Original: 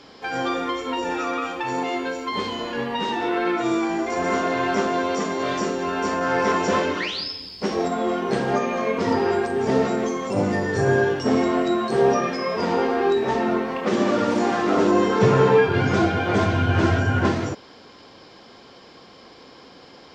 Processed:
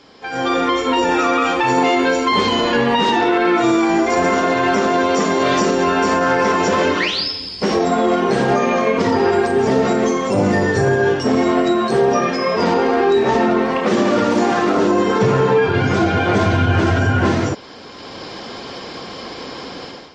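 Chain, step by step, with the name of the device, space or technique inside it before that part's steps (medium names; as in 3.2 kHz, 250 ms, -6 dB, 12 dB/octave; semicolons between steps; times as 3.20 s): low-bitrate web radio (level rider gain up to 16 dB; peak limiter -6.5 dBFS, peak gain reduction 5.5 dB; MP3 48 kbps 48 kHz)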